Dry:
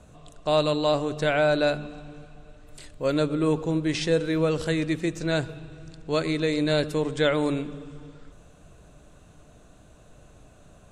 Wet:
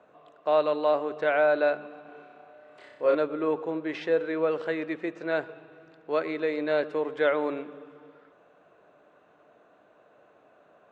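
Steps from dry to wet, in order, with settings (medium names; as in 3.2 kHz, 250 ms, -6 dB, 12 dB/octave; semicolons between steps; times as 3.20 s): Butterworth band-pass 910 Hz, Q 0.53; 2.02–3.15 s: flutter echo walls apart 5.4 m, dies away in 0.79 s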